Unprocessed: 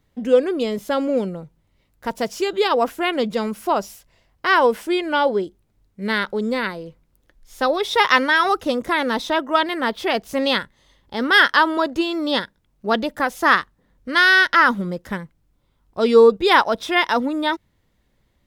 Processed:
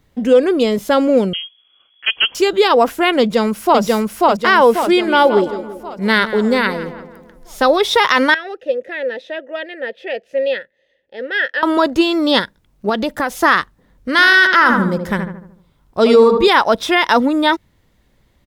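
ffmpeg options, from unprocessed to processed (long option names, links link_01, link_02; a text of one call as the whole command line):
ffmpeg -i in.wav -filter_complex "[0:a]asettb=1/sr,asplit=3[link_01][link_02][link_03];[link_01]atrim=end=1.334[link_04];[link_02]atrim=start=1.33:end=2.35,asetpts=PTS-STARTPTS,afade=type=in:duration=0.004:curve=qsin,afade=type=out:start_time=1.016:duration=0.004:curve=qsin,lowpass=frequency=2900:width_type=q:width=0.5098,lowpass=frequency=2900:width_type=q:width=0.6013,lowpass=frequency=2900:width_type=q:width=0.9,lowpass=frequency=2900:width_type=q:width=2.563,afreqshift=-3400[link_05];[link_03]atrim=start=2.346[link_06];[link_04][link_05]acrossfade=duration=0.004:curve1=hsin:curve2=qsin[link_07];[link_07][link_06]acrossfade=duration=0.004:curve1=qsin:curve2=hsin,asplit=2[link_08][link_09];[link_09]afade=type=in:start_time=3.2:duration=0.01,afade=type=out:start_time=3.82:duration=0.01,aecho=0:1:540|1080|1620|2160|2700|3240|3780:0.944061|0.47203|0.236015|0.118008|0.0590038|0.0295019|0.014751[link_10];[link_08][link_10]amix=inputs=2:normalize=0,asettb=1/sr,asplit=3[link_11][link_12][link_13];[link_11]atrim=end=4.844[link_14];[link_12]atrim=start=4.84:end=7.75,asetpts=PTS-STARTPTS,afade=type=in:duration=0.004:curve=qsin,afade=type=out:start_time=2.906:duration=0.004:curve=qsin,asplit=2[link_15][link_16];[link_16]adelay=167,lowpass=frequency=2000:poles=1,volume=-12dB,asplit=2[link_17][link_18];[link_18]adelay=167,lowpass=frequency=2000:poles=1,volume=0.49,asplit=2[link_19][link_20];[link_20]adelay=167,lowpass=frequency=2000:poles=1,volume=0.49,asplit=2[link_21][link_22];[link_22]adelay=167,lowpass=frequency=2000:poles=1,volume=0.49,asplit=2[link_23][link_24];[link_24]adelay=167,lowpass=frequency=2000:poles=1,volume=0.49[link_25];[link_15][link_17][link_19][link_21][link_23][link_25]amix=inputs=6:normalize=0,atrim=end_sample=128331[link_26];[link_13]atrim=start=7.746[link_27];[link_14][link_26]acrossfade=duration=0.004:curve1=hsin:curve2=qsin[link_28];[link_28][link_27]acrossfade=duration=0.004:curve1=qsin:curve2=hsin,asettb=1/sr,asplit=3[link_29][link_30][link_31];[link_29]atrim=end=8.344[link_32];[link_30]atrim=start=8.34:end=11.63,asetpts=PTS-STARTPTS,afade=type=in:duration=0.004:curve=qsin,afade=type=out:start_time=3.286:duration=0.004:curve=qsin,asplit=3[link_33][link_34][link_35];[link_33]bandpass=frequency=530:width_type=q:width=8,volume=0dB[link_36];[link_34]bandpass=frequency=1840:width_type=q:width=8,volume=-6dB[link_37];[link_35]bandpass=frequency=2480:width_type=q:width=8,volume=-9dB[link_38];[link_36][link_37][link_38]amix=inputs=3:normalize=0[link_39];[link_31]atrim=start=11.626[link_40];[link_32][link_39]acrossfade=duration=0.004:curve1=hsin:curve2=qsin[link_41];[link_41][link_40]acrossfade=duration=0.004:curve1=qsin:curve2=hsin,asettb=1/sr,asplit=3[link_42][link_43][link_44];[link_42]atrim=end=12.894[link_45];[link_43]atrim=start=12.89:end=13.36,asetpts=PTS-STARTPTS,afade=type=in:duration=0.004:curve=qsin,afade=type=out:start_time=0.466:duration=0.004:curve=qsin,acompressor=threshold=-22dB:ratio=3:attack=3.2:release=140:knee=1:detection=peak[link_46];[link_44]atrim=start=13.356[link_47];[link_45][link_46]acrossfade=duration=0.004:curve1=hsin:curve2=qsin[link_48];[link_48][link_47]acrossfade=duration=0.004:curve1=qsin:curve2=hsin,asettb=1/sr,asplit=3[link_49][link_50][link_51];[link_49]atrim=end=14.114[link_52];[link_50]atrim=start=14.11:end=16.48,asetpts=PTS-STARTPTS,afade=type=in:duration=0.004:curve=qsin,afade=type=out:start_time=2.366:duration=0.004:curve=qsin,asplit=2[link_53][link_54];[link_54]adelay=75,lowpass=frequency=1600:poles=1,volume=-6dB,asplit=2[link_55][link_56];[link_56]adelay=75,lowpass=frequency=1600:poles=1,volume=0.52,asplit=2[link_57][link_58];[link_58]adelay=75,lowpass=frequency=1600:poles=1,volume=0.52,asplit=2[link_59][link_60];[link_60]adelay=75,lowpass=frequency=1600:poles=1,volume=0.52,asplit=2[link_61][link_62];[link_62]adelay=75,lowpass=frequency=1600:poles=1,volume=0.52,asplit=2[link_63][link_64];[link_64]adelay=75,lowpass=frequency=1600:poles=1,volume=0.52[link_65];[link_53][link_55][link_57][link_59][link_61][link_63][link_65]amix=inputs=7:normalize=0,atrim=end_sample=104517[link_66];[link_51]atrim=start=16.476[link_67];[link_52][link_66]acrossfade=duration=0.004:curve1=hsin:curve2=qsin[link_68];[link_68][link_67]acrossfade=duration=0.004:curve1=qsin:curve2=hsin,alimiter=level_in=8.5dB:limit=-1dB:release=50:level=0:latency=1,volume=-1dB" out.wav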